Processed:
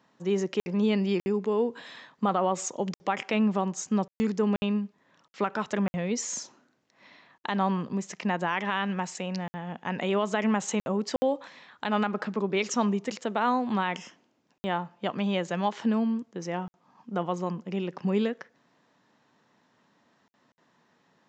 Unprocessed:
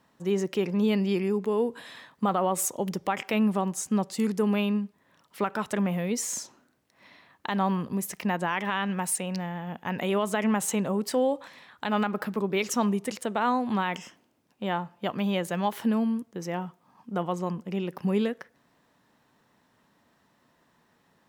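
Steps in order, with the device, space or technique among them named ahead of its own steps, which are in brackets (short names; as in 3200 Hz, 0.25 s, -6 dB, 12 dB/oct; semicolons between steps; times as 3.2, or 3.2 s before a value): call with lost packets (HPF 130 Hz 12 dB/oct; downsampling 16000 Hz; packet loss packets of 60 ms random)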